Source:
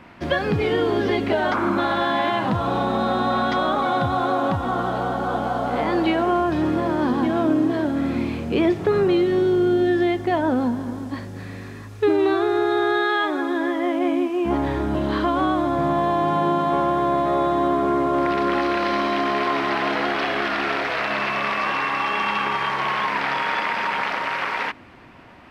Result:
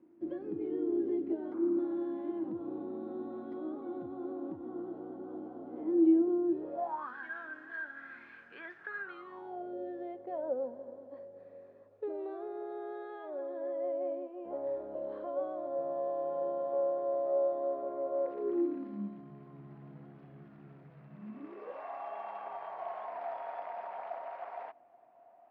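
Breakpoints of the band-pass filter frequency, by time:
band-pass filter, Q 15
6.50 s 330 Hz
7.17 s 1.6 kHz
9.03 s 1.6 kHz
9.75 s 550 Hz
18.24 s 550 Hz
19.27 s 150 Hz
21.12 s 150 Hz
21.85 s 690 Hz

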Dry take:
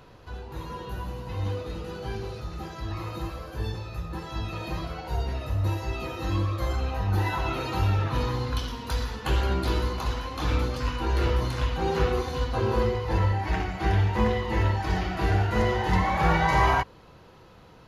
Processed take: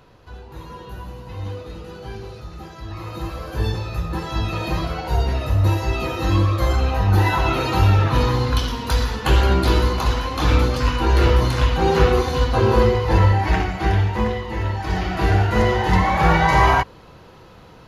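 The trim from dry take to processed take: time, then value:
2.88 s 0 dB
3.58 s +9 dB
13.45 s +9 dB
14.58 s -0.5 dB
15.15 s +6.5 dB

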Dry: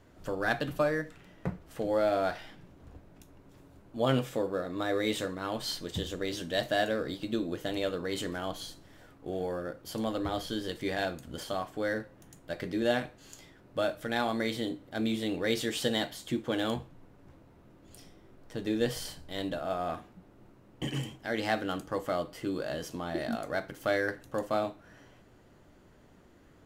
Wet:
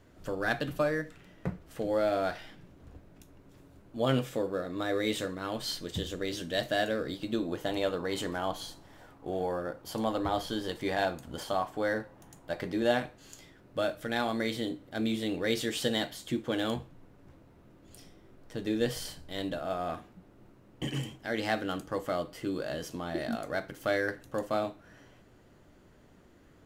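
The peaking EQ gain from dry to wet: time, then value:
peaking EQ 880 Hz 0.82 oct
7.12 s -2.5 dB
7.52 s +7 dB
12.63 s +7 dB
13.38 s -1.5 dB

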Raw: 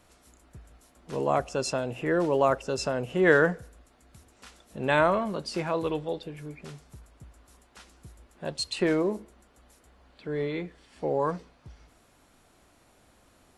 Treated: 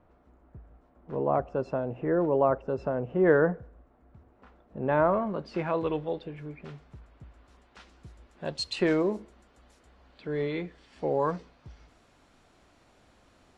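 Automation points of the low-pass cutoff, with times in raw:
4.99 s 1.1 kHz
5.68 s 2.8 kHz
6.89 s 2.8 kHz
8.59 s 6 kHz

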